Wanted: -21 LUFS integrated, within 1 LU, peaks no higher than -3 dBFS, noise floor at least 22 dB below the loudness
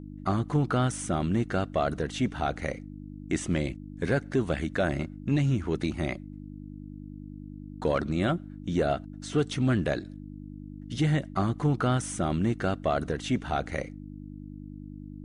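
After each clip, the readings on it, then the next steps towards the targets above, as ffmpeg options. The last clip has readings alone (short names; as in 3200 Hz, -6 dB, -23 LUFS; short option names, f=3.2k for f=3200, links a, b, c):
hum 50 Hz; harmonics up to 300 Hz; hum level -40 dBFS; loudness -29.0 LUFS; peak -15.0 dBFS; loudness target -21.0 LUFS
-> -af "bandreject=f=50:t=h:w=4,bandreject=f=100:t=h:w=4,bandreject=f=150:t=h:w=4,bandreject=f=200:t=h:w=4,bandreject=f=250:t=h:w=4,bandreject=f=300:t=h:w=4"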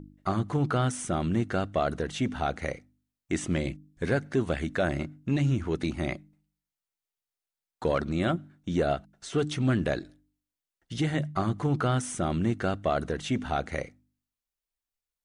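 hum none; loudness -29.5 LUFS; peak -15.0 dBFS; loudness target -21.0 LUFS
-> -af "volume=8.5dB"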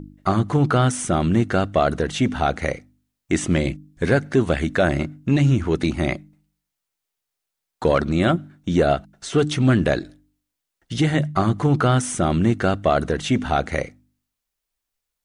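loudness -21.0 LUFS; peak -6.5 dBFS; noise floor -82 dBFS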